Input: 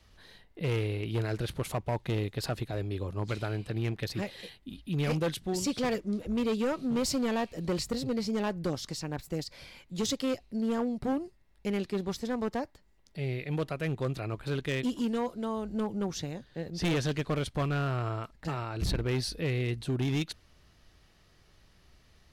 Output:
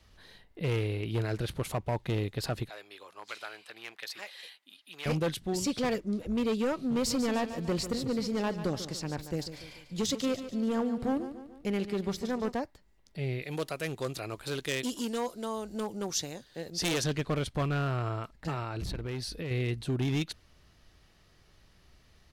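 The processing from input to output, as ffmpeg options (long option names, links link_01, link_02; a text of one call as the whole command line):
ffmpeg -i in.wav -filter_complex "[0:a]asettb=1/sr,asplit=3[link_01][link_02][link_03];[link_01]atrim=end=2.694[link_04];[link_02]atrim=start=2.69:end=5.06,asetpts=PTS-STARTPTS,afade=type=in:duration=0.004:curve=qsin,afade=type=out:start_time=2.366:duration=0.004:curve=qsin,highpass=1000[link_05];[link_03]atrim=start=5.056[link_06];[link_04][link_05]acrossfade=duration=0.004:curve1=hsin:curve2=qsin[link_07];[link_07][link_06]acrossfade=duration=0.004:curve1=qsin:curve2=hsin,asplit=3[link_08][link_09][link_10];[link_08]afade=type=out:start_time=7.06:duration=0.02[link_11];[link_09]aecho=1:1:145|290|435|580|725:0.266|0.13|0.0639|0.0313|0.0153,afade=type=in:start_time=7.06:duration=0.02,afade=type=out:start_time=12.51:duration=0.02[link_12];[link_10]afade=type=in:start_time=12.51:duration=0.02[link_13];[link_11][link_12][link_13]amix=inputs=3:normalize=0,asettb=1/sr,asplit=3[link_14][link_15][link_16];[link_14]atrim=end=13.424[link_17];[link_15]atrim=start=13.42:end=17.04,asetpts=PTS-STARTPTS,afade=type=in:duration=0.004:curve=qsin,afade=type=out:start_time=3.616:duration=0.004:curve=qsin,bass=frequency=250:gain=-8,treble=frequency=4000:gain=11[link_18];[link_16]atrim=start=17.036[link_19];[link_17][link_18]acrossfade=duration=0.004:curve1=hsin:curve2=qsin[link_20];[link_20][link_19]acrossfade=duration=0.004:curve1=qsin:curve2=hsin,asettb=1/sr,asplit=3[link_21][link_22][link_23];[link_21]atrim=end=18.794[link_24];[link_22]atrim=start=18.79:end=19.51,asetpts=PTS-STARTPTS,afade=type=in:duration=0.004:curve=qsin,afade=type=out:start_time=0.716:duration=0.004:curve=qsin,acompressor=threshold=-33dB:ratio=6:attack=3.2:release=140:knee=1:detection=peak[link_25];[link_23]atrim=start=19.506[link_26];[link_24][link_25]acrossfade=duration=0.004:curve1=hsin:curve2=qsin[link_27];[link_27][link_26]acrossfade=duration=0.004:curve1=qsin:curve2=hsin" out.wav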